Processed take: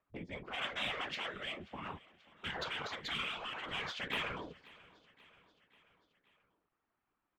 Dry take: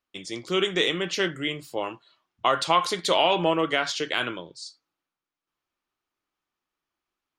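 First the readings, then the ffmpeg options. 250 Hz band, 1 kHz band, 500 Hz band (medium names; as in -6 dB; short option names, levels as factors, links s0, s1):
-18.5 dB, -17.5 dB, -21.5 dB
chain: -filter_complex "[0:a]lowpass=1800,agate=range=0.02:threshold=0.00224:ratio=16:detection=peak,afftfilt=real='re*lt(hypot(re,im),0.0631)':imag='im*lt(hypot(re,im),0.0631)':win_size=1024:overlap=0.75,afwtdn=0.00282,aeval=exprs='0.119*(cos(1*acos(clip(val(0)/0.119,-1,1)))-cos(1*PI/2))+0.00188*(cos(2*acos(clip(val(0)/0.119,-1,1)))-cos(2*PI/2))+0.0015*(cos(3*acos(clip(val(0)/0.119,-1,1)))-cos(3*PI/2))+0.00211*(cos(5*acos(clip(val(0)/0.119,-1,1)))-cos(5*PI/2))+0.0075*(cos(7*acos(clip(val(0)/0.119,-1,1)))-cos(7*PI/2))':c=same,asplit=2[s0][s1];[s1]volume=56.2,asoftclip=hard,volume=0.0178,volume=0.299[s2];[s0][s2]amix=inputs=2:normalize=0,flanger=delay=3.7:depth=5.8:regen=-37:speed=1.7:shape=sinusoidal,afftfilt=real='hypot(re,im)*cos(2*PI*random(0))':imag='hypot(re,im)*sin(2*PI*random(1))':win_size=512:overlap=0.75,acompressor=mode=upward:threshold=0.00158:ratio=2.5,aecho=1:1:534|1068|1602|2136:0.0794|0.0461|0.0267|0.0155,volume=3.55"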